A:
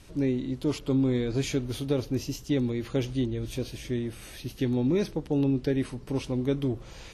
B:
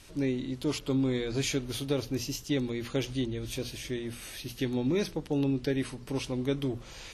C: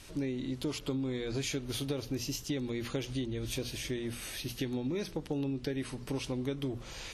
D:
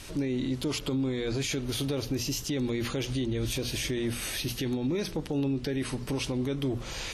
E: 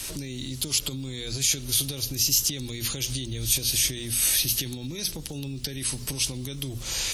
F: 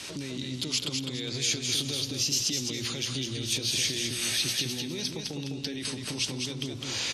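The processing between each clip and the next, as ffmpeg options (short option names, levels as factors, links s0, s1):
-af "tiltshelf=f=1100:g=-3.5,bandreject=f=60:t=h:w=6,bandreject=f=120:t=h:w=6,bandreject=f=180:t=h:w=6,bandreject=f=240:t=h:w=6"
-af "acompressor=threshold=0.0224:ratio=6,volume=1.19"
-af "alimiter=level_in=2:limit=0.0631:level=0:latency=1:release=19,volume=0.501,volume=2.37"
-filter_complex "[0:a]acrossover=split=150|3000[s0][s1][s2];[s1]acompressor=threshold=0.00891:ratio=6[s3];[s0][s3][s2]amix=inputs=3:normalize=0,crystalizer=i=3.5:c=0,volume=1.26"
-filter_complex "[0:a]highpass=150,lowpass=5100,asplit=2[s0][s1];[s1]aecho=0:1:206|412|618|824:0.596|0.191|0.061|0.0195[s2];[s0][s2]amix=inputs=2:normalize=0"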